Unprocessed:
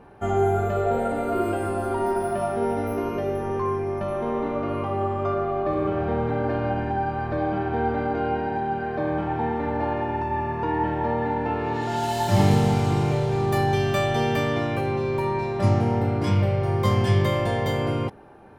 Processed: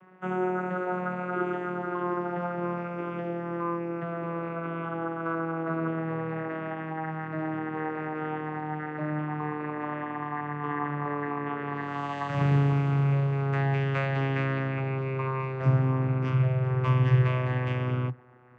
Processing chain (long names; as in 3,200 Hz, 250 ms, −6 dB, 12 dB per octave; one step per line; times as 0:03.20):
vocoder with a gliding carrier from F#3, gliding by −7 semitones
flat-topped bell 1,800 Hz +11.5 dB
level −4 dB